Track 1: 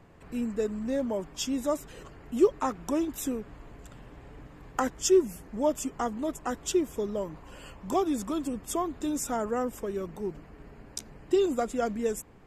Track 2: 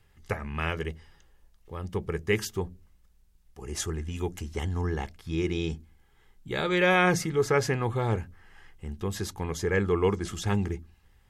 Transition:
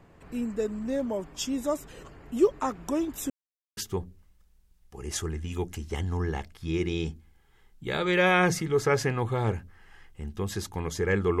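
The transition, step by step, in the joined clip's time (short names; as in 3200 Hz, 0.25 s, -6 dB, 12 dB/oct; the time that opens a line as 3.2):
track 1
3.3–3.77 mute
3.77 switch to track 2 from 2.41 s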